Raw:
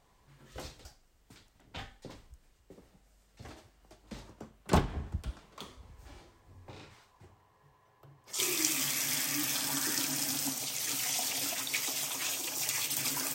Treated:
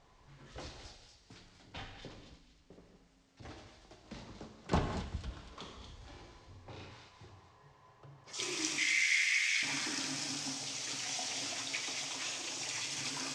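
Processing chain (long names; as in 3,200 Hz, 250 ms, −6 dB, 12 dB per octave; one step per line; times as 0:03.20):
mu-law and A-law mismatch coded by mu
low-pass filter 6,600 Hz 24 dB per octave
0:02.09–0:03.43: amplitude modulation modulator 220 Hz, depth 70%
0:08.78–0:09.63: high-pass with resonance 2,100 Hz, resonance Q 8
delay with a high-pass on its return 238 ms, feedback 34%, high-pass 3,100 Hz, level −5 dB
reverb whose tail is shaped and stops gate 260 ms flat, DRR 5 dB
level −6 dB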